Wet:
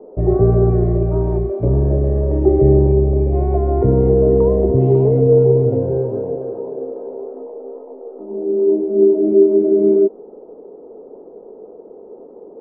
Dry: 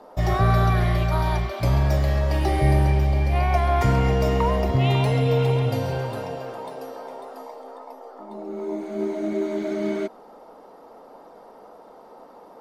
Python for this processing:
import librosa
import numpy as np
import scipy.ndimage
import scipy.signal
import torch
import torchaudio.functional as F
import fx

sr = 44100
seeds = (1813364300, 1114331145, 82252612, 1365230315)

y = fx.lowpass_res(x, sr, hz=410.0, q=4.9)
y = y * 10.0 ** (3.5 / 20.0)